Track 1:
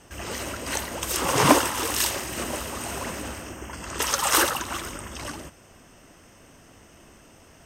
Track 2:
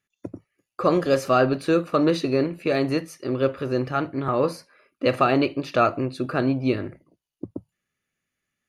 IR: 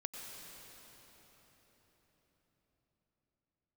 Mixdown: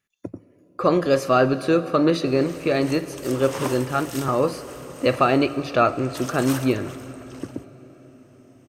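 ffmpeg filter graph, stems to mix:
-filter_complex "[0:a]adelay=2150,volume=-12dB[a];[1:a]volume=-0.5dB,asplit=2[b][c];[c]volume=-9dB[d];[2:a]atrim=start_sample=2205[e];[d][e]afir=irnorm=-1:irlink=0[f];[a][b][f]amix=inputs=3:normalize=0"

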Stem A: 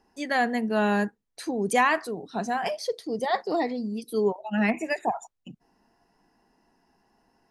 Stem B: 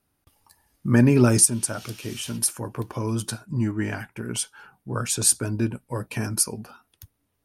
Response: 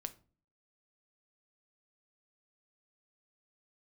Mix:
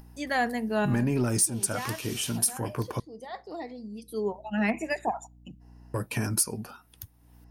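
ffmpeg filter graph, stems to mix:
-filter_complex "[0:a]aeval=exprs='val(0)+0.00282*(sin(2*PI*60*n/s)+sin(2*PI*2*60*n/s)/2+sin(2*PI*3*60*n/s)/3+sin(2*PI*4*60*n/s)/4+sin(2*PI*5*60*n/s)/5)':c=same,volume=-3.5dB,asplit=2[a][b];[b]volume=-13dB[c];[1:a]acompressor=threshold=-23dB:ratio=4,asoftclip=type=tanh:threshold=-17dB,volume=0dB,asplit=3[d][e][f];[d]atrim=end=3,asetpts=PTS-STARTPTS,afade=t=out:st=2.996:d=0.004:c=hsin[g];[e]atrim=start=3:end=5.94,asetpts=PTS-STARTPTS,volume=0[h];[f]atrim=start=5.94,asetpts=PTS-STARTPTS,afade=t=in:d=0.004:c=hsin[i];[g][h][i]concat=n=3:v=0:a=1,asplit=3[j][k][l];[k]volume=-20.5dB[m];[l]apad=whole_len=331131[n];[a][n]sidechaincompress=threshold=-47dB:ratio=8:attack=12:release=1070[o];[2:a]atrim=start_sample=2205[p];[c][m]amix=inputs=2:normalize=0[q];[q][p]afir=irnorm=-1:irlink=0[r];[o][j][r]amix=inputs=3:normalize=0,acompressor=mode=upward:threshold=-44dB:ratio=2.5,highshelf=f=11k:g=6.5"

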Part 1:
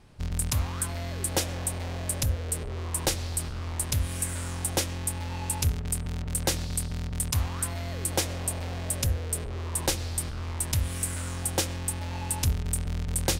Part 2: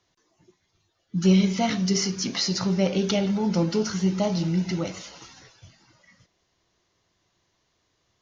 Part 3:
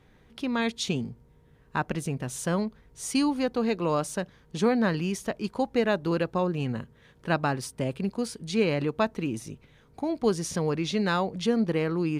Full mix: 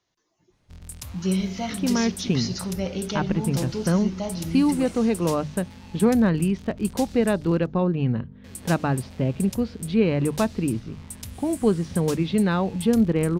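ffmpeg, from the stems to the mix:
-filter_complex "[0:a]adynamicequalizer=threshold=0.00447:dfrequency=2100:dqfactor=0.7:tfrequency=2100:tqfactor=0.7:attack=5:release=100:ratio=0.375:range=2:mode=boostabove:tftype=highshelf,adelay=500,volume=-12dB,asplit=3[a][b][c];[a]atrim=end=7.66,asetpts=PTS-STARTPTS,afade=t=out:st=7.656:d=0.004:c=hsin[d];[b]atrim=start=7.66:end=8.44,asetpts=PTS-STARTPTS,volume=0[e];[c]atrim=start=8.44,asetpts=PTS-STARTPTS,afade=t=in:d=0.004:c=hsin[f];[d][e][f]concat=n=3:v=0:a=1[g];[1:a]volume=-5.5dB[h];[2:a]lowpass=f=4.1k:w=0.5412,lowpass=f=4.1k:w=1.3066,lowshelf=f=340:g=11.5,aeval=exprs='val(0)+0.02*(sin(2*PI*50*n/s)+sin(2*PI*2*50*n/s)/2+sin(2*PI*3*50*n/s)/3+sin(2*PI*4*50*n/s)/4+sin(2*PI*5*50*n/s)/5)':c=same,adelay=1400,volume=-1.5dB[i];[g][h][i]amix=inputs=3:normalize=0,bandreject=f=50:t=h:w=6,bandreject=f=100:t=h:w=6,bandreject=f=150:t=h:w=6"

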